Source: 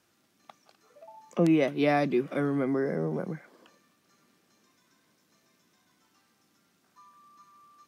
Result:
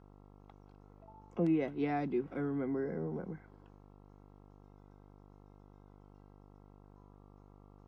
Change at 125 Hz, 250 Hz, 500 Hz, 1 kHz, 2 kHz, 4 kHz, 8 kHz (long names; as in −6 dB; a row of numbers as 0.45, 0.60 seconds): −7.0 dB, −7.0 dB, −9.0 dB, −9.0 dB, −12.5 dB, below −15 dB, can't be measured